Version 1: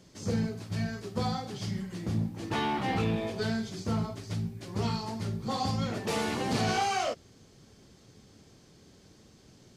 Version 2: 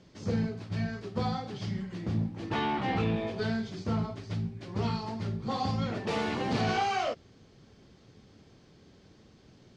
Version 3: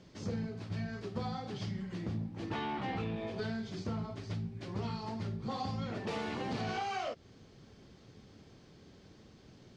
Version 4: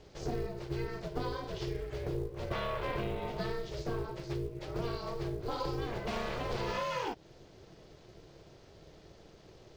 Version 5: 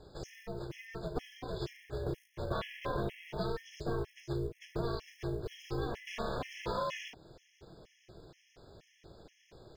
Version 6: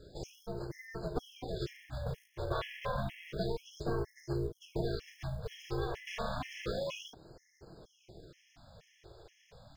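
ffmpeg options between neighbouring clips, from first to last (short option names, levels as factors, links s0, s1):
-af "lowpass=4200"
-af "acompressor=threshold=0.0158:ratio=3"
-af "acrusher=bits=8:mode=log:mix=0:aa=0.000001,aeval=exprs='val(0)*sin(2*PI*240*n/s)':c=same,volume=1.68"
-af "afftfilt=real='re*gt(sin(2*PI*2.1*pts/sr)*(1-2*mod(floor(b*sr/1024/1700),2)),0)':imag='im*gt(sin(2*PI*2.1*pts/sr)*(1-2*mod(floor(b*sr/1024/1700),2)),0)':win_size=1024:overlap=0.75,volume=1.12"
-af "afftfilt=real='re*(1-between(b*sr/1024,220*pow(3100/220,0.5+0.5*sin(2*PI*0.3*pts/sr))/1.41,220*pow(3100/220,0.5+0.5*sin(2*PI*0.3*pts/sr))*1.41))':imag='im*(1-between(b*sr/1024,220*pow(3100/220,0.5+0.5*sin(2*PI*0.3*pts/sr))/1.41,220*pow(3100/220,0.5+0.5*sin(2*PI*0.3*pts/sr))*1.41))':win_size=1024:overlap=0.75,volume=1.12"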